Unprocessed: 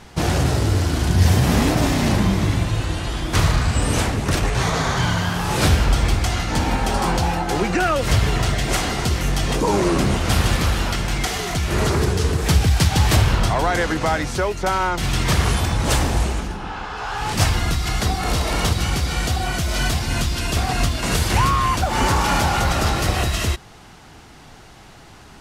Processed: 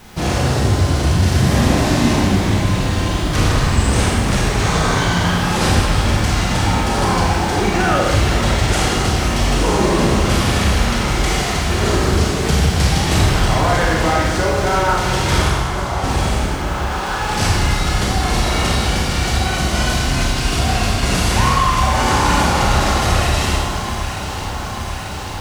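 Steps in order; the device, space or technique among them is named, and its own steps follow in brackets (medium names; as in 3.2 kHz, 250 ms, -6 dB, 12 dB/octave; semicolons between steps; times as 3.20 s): compact cassette (saturation -12 dBFS, distortion -17 dB; low-pass 11 kHz 12 dB/octave; wow and flutter 17 cents; white noise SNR 33 dB); 15.48–16.04 s: Chebyshev band-pass 670–1400 Hz, order 4; echo whose repeats swap between lows and highs 444 ms, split 1.4 kHz, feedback 86%, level -9 dB; Schroeder reverb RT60 1.3 s, combs from 30 ms, DRR -3 dB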